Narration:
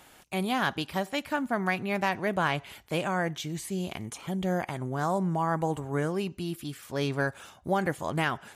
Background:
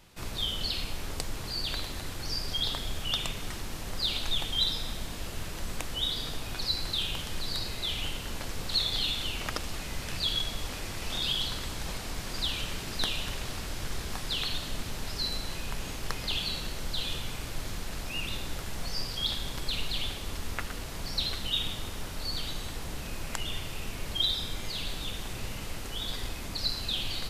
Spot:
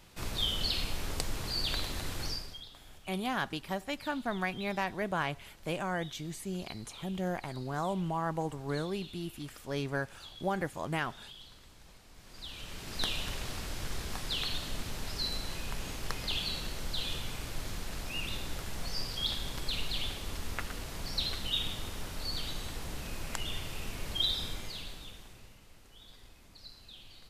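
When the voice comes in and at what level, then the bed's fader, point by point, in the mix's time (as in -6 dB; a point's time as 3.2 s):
2.75 s, -5.5 dB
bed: 2.25 s 0 dB
2.68 s -20.5 dB
12.09 s -20.5 dB
13.05 s -2.5 dB
24.47 s -2.5 dB
25.61 s -20 dB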